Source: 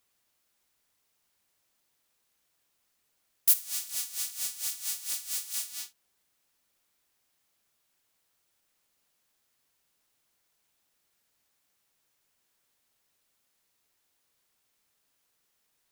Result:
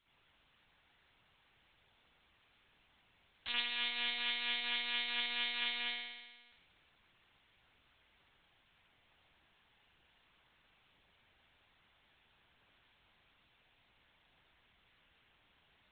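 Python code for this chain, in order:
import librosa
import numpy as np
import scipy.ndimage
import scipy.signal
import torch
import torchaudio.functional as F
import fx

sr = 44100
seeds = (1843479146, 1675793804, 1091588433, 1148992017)

y = fx.high_shelf(x, sr, hz=2900.0, db=7.5)
y = fx.rev_spring(y, sr, rt60_s=1.3, pass_ms=(59,), chirp_ms=75, drr_db=-9.0)
y = fx.lpc_monotone(y, sr, seeds[0], pitch_hz=240.0, order=10)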